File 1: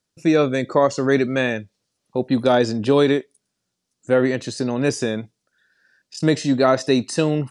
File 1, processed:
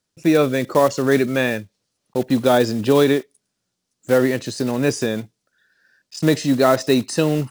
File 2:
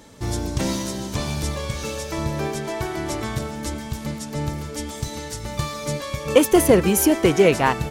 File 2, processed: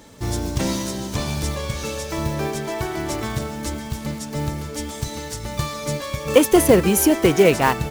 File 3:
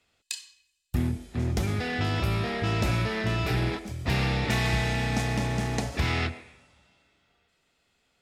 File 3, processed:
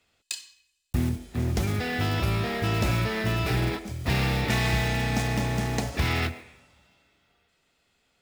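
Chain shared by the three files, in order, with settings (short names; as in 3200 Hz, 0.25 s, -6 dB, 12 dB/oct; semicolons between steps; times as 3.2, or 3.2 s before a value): block floating point 5-bit; gain +1 dB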